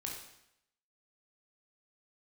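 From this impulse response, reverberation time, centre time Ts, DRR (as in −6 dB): 0.80 s, 43 ms, −1.5 dB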